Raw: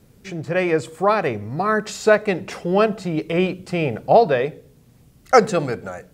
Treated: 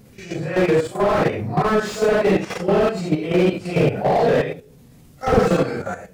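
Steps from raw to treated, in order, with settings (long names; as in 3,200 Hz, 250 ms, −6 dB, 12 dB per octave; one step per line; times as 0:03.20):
random phases in long frames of 200 ms
output level in coarse steps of 11 dB
slew-rate limiting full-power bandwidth 53 Hz
level +7.5 dB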